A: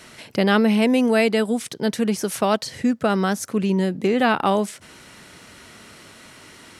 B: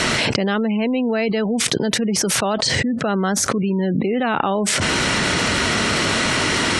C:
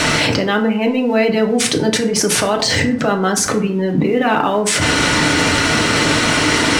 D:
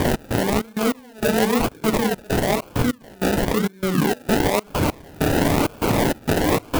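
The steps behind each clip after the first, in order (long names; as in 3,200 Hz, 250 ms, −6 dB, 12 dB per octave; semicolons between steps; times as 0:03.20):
low-pass filter 7,800 Hz 12 dB per octave; gate on every frequency bin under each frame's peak −30 dB strong; envelope flattener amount 100%; level −4 dB
in parallel at +1.5 dB: brickwall limiter −10.5 dBFS, peak gain reduction 8.5 dB; on the sum: dead-zone distortion −36.5 dBFS; feedback delay network reverb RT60 0.55 s, low-frequency decay 1×, high-frequency decay 0.6×, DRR 2 dB; level −3.5 dB
sample-and-hold swept by an LFO 32×, swing 60% 1 Hz; gate pattern "x.xx.x..xxx.x" 98 BPM −24 dB; converter with an unsteady clock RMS 0.034 ms; level −3.5 dB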